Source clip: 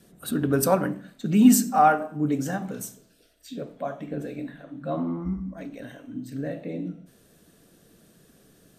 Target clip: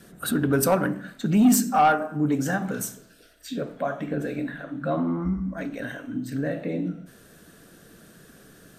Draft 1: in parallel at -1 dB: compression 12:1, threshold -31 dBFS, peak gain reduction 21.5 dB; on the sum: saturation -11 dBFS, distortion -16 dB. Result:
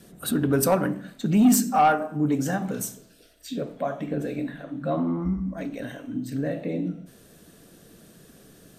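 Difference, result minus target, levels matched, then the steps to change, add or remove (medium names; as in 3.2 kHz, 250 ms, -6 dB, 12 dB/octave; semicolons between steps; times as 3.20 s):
2 kHz band -3.5 dB
add after compression: peaking EQ 1.5 kHz +12.5 dB 0.86 oct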